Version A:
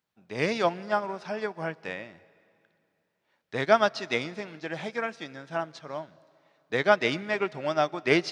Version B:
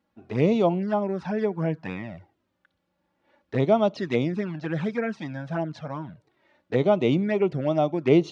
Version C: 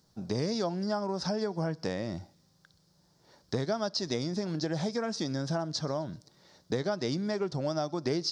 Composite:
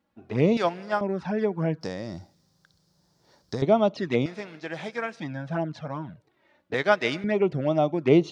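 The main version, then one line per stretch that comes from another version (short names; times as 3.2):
B
0.57–1.01 from A
1.81–3.62 from C
4.26–5.2 from A
6.74–7.24 from A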